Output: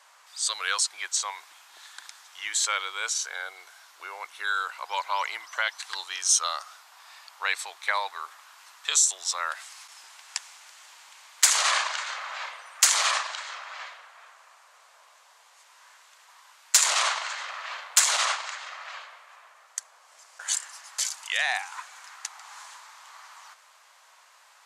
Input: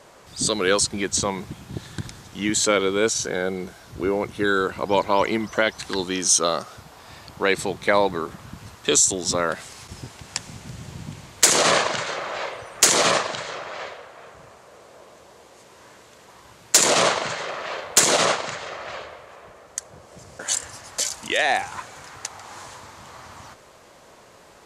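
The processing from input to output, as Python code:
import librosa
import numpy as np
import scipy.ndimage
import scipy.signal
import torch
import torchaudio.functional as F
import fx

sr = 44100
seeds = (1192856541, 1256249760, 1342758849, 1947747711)

y = scipy.signal.sosfilt(scipy.signal.butter(4, 910.0, 'highpass', fs=sr, output='sos'), x)
y = y * 10.0 ** (-3.5 / 20.0)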